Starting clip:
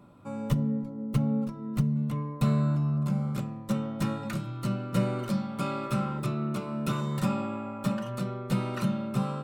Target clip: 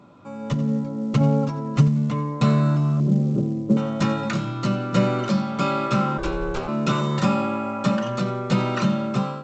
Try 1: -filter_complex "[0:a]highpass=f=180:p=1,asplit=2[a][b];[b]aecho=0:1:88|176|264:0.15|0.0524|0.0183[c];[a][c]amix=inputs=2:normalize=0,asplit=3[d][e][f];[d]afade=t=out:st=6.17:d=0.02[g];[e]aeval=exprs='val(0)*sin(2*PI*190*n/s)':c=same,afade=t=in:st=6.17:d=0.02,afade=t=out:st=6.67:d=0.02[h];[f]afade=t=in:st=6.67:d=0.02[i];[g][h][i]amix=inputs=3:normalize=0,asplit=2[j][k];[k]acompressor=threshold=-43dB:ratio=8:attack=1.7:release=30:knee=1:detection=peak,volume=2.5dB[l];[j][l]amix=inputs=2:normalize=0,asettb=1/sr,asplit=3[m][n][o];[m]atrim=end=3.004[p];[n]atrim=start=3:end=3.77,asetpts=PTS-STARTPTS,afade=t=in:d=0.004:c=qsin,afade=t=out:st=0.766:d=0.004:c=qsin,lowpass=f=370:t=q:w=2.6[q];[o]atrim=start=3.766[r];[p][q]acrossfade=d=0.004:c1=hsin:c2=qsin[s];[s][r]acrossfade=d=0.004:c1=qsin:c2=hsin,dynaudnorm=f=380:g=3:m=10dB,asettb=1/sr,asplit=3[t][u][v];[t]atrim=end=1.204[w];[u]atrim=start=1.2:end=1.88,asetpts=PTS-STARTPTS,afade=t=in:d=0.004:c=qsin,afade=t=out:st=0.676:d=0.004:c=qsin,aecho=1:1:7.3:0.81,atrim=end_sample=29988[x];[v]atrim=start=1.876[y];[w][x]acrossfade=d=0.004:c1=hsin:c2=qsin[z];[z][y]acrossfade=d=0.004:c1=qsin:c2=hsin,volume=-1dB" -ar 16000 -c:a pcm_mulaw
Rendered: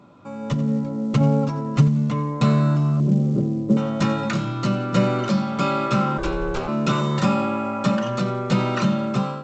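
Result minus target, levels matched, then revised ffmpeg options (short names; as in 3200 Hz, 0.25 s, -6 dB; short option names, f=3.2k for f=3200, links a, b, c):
compressor: peak gain reduction -6 dB
-filter_complex "[0:a]highpass=f=180:p=1,asplit=2[a][b];[b]aecho=0:1:88|176|264:0.15|0.0524|0.0183[c];[a][c]amix=inputs=2:normalize=0,asplit=3[d][e][f];[d]afade=t=out:st=6.17:d=0.02[g];[e]aeval=exprs='val(0)*sin(2*PI*190*n/s)':c=same,afade=t=in:st=6.17:d=0.02,afade=t=out:st=6.67:d=0.02[h];[f]afade=t=in:st=6.67:d=0.02[i];[g][h][i]amix=inputs=3:normalize=0,asplit=2[j][k];[k]acompressor=threshold=-50dB:ratio=8:attack=1.7:release=30:knee=1:detection=peak,volume=2.5dB[l];[j][l]amix=inputs=2:normalize=0,asettb=1/sr,asplit=3[m][n][o];[m]atrim=end=3.004[p];[n]atrim=start=3:end=3.77,asetpts=PTS-STARTPTS,afade=t=in:d=0.004:c=qsin,afade=t=out:st=0.766:d=0.004:c=qsin,lowpass=f=370:t=q:w=2.6[q];[o]atrim=start=3.766[r];[p][q]acrossfade=d=0.004:c1=hsin:c2=qsin[s];[s][r]acrossfade=d=0.004:c1=qsin:c2=hsin,dynaudnorm=f=380:g=3:m=10dB,asettb=1/sr,asplit=3[t][u][v];[t]atrim=end=1.204[w];[u]atrim=start=1.2:end=1.88,asetpts=PTS-STARTPTS,afade=t=in:d=0.004:c=qsin,afade=t=out:st=0.676:d=0.004:c=qsin,aecho=1:1:7.3:0.81,atrim=end_sample=29988[x];[v]atrim=start=1.876[y];[w][x]acrossfade=d=0.004:c1=hsin:c2=qsin[z];[z][y]acrossfade=d=0.004:c1=qsin:c2=hsin,volume=-1dB" -ar 16000 -c:a pcm_mulaw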